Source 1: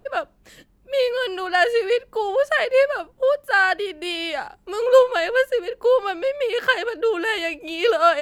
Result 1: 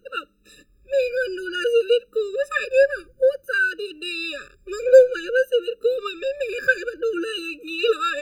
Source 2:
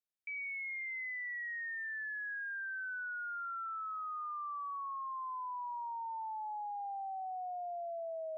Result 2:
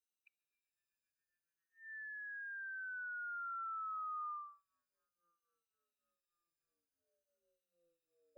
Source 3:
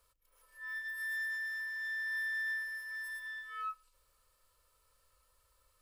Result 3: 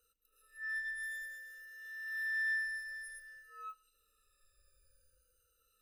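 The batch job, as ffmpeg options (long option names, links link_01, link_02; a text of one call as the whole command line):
ffmpeg -i in.wav -af "afftfilt=real='re*pow(10,16/40*sin(2*PI*(1.9*log(max(b,1)*sr/1024/100)/log(2)-(-0.54)*(pts-256)/sr)))':imag='im*pow(10,16/40*sin(2*PI*(1.9*log(max(b,1)*sr/1024/100)/log(2)-(-0.54)*(pts-256)/sr)))':win_size=1024:overlap=0.75,equalizer=frequency=125:width_type=o:width=1:gain=-4,equalizer=frequency=250:width_type=o:width=1:gain=-4,equalizer=frequency=1000:width_type=o:width=1:gain=-9,afftfilt=real='re*eq(mod(floor(b*sr/1024/590),2),0)':imag='im*eq(mod(floor(b*sr/1024/590),2),0)':win_size=1024:overlap=0.75,volume=-1dB" out.wav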